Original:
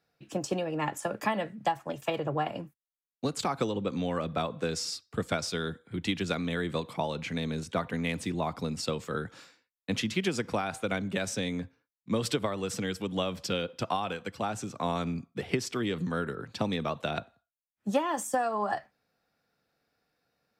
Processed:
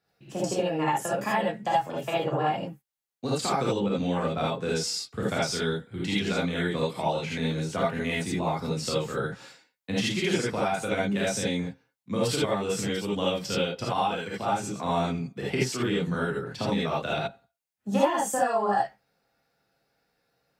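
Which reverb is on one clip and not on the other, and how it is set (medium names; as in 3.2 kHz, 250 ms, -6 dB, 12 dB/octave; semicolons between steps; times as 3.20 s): gated-style reverb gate 100 ms rising, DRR -6.5 dB; trim -3 dB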